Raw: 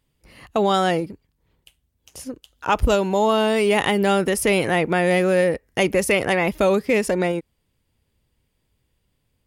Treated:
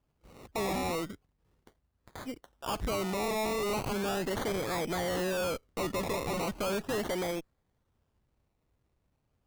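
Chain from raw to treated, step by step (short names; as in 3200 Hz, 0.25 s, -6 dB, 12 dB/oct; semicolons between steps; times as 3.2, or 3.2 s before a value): tube stage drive 25 dB, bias 0.35; decimation with a swept rate 22×, swing 60% 0.37 Hz; gain -4.5 dB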